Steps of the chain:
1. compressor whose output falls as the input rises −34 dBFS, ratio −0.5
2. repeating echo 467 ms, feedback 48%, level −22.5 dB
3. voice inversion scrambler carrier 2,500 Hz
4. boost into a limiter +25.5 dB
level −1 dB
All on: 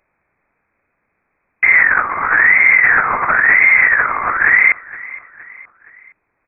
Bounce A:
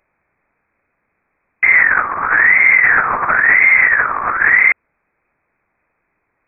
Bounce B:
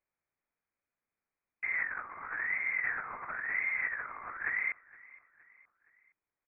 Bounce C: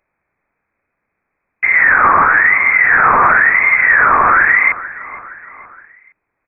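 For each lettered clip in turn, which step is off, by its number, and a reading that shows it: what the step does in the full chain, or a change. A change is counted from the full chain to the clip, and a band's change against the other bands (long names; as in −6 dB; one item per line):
2, change in momentary loudness spread −3 LU
4, change in crest factor +5.0 dB
1, change in crest factor −1.5 dB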